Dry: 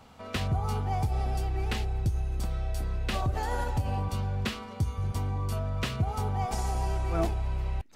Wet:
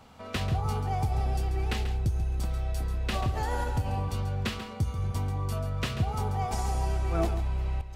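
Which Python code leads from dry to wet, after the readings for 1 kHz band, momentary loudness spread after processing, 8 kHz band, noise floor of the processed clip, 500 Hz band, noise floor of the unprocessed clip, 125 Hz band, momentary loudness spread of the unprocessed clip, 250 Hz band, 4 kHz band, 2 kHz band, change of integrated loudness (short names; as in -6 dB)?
0.0 dB, 3 LU, +0.5 dB, -41 dBFS, +0.5 dB, -43 dBFS, +0.5 dB, 4 LU, 0.0 dB, +0.5 dB, +0.5 dB, +0.5 dB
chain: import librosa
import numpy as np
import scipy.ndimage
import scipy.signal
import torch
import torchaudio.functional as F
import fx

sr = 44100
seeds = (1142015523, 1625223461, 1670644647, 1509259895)

y = x + 10.0 ** (-10.5 / 20.0) * np.pad(x, (int(138 * sr / 1000.0), 0))[:len(x)]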